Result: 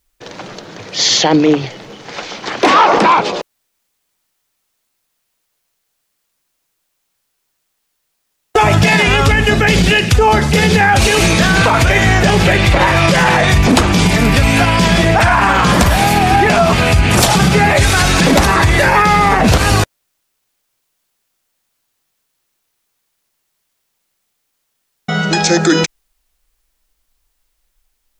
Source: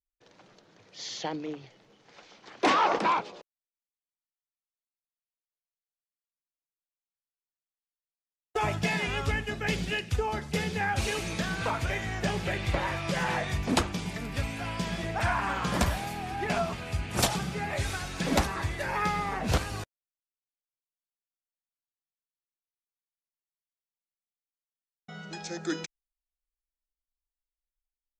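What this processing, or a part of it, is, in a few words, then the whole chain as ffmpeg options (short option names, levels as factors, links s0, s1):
loud club master: -af "acompressor=threshold=0.0398:ratio=2.5,asoftclip=type=hard:threshold=0.1,alimiter=level_in=25.1:limit=0.891:release=50:level=0:latency=1,volume=0.891"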